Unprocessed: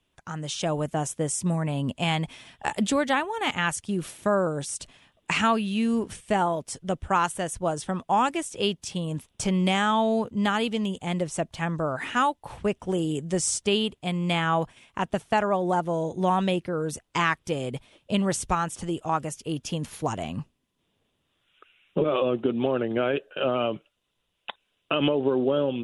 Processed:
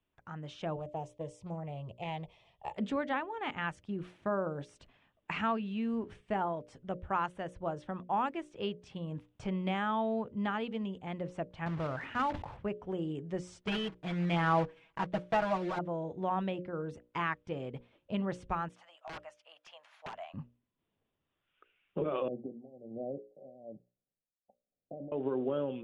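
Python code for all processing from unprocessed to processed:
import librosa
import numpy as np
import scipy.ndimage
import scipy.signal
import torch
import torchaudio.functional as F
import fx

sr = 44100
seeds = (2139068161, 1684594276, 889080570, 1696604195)

y = fx.chain(x, sr, fx.fixed_phaser(hz=630.0, stages=4),
    fx.doppler_dist(depth_ms=0.26), at=(0.76, 2.76))
y = fx.chain(y, sr, fx.block_float(bits=3),
    fx.peak_eq(hz=93.0, db=7.0, octaves=1.4),
    fx.sustainer(db_per_s=71.0), at=(11.66, 12.57))
y = fx.chain(y, sr, fx.block_float(bits=3),
    fx.comb(ms=6.2, depth=0.94), at=(13.67, 15.79))
y = fx.chain(y, sr, fx.ellip_highpass(hz=620.0, order=4, stop_db=40),
    fx.overflow_wrap(gain_db=24.5), at=(18.69, 20.34))
y = fx.chain(y, sr, fx.tremolo(hz=1.2, depth=0.87),
    fx.cheby_ripple(hz=790.0, ripple_db=6), at=(22.28, 25.12))
y = scipy.signal.sosfilt(scipy.signal.butter(2, 2300.0, 'lowpass', fs=sr, output='sos'), y)
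y = fx.hum_notches(y, sr, base_hz=60, count=10)
y = y * 10.0 ** (-9.0 / 20.0)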